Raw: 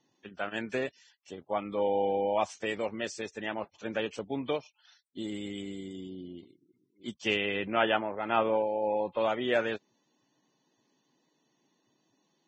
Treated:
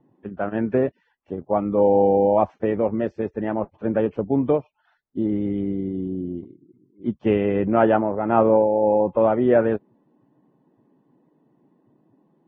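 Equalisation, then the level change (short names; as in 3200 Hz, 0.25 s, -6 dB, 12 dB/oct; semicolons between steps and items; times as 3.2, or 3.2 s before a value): LPF 1400 Hz 12 dB/oct; tilt -4 dB/oct; low shelf 120 Hz -7 dB; +8.0 dB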